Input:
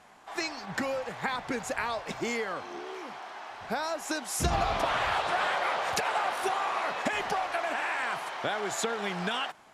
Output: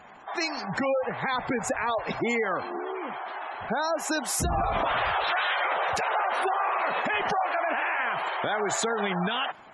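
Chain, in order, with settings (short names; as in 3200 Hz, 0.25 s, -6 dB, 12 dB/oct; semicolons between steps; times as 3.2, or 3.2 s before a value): spectral gate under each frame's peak -20 dB strong; 5.24–5.65 tilt +4.5 dB/oct; limiter -25 dBFS, peak gain reduction 10 dB; gain +7 dB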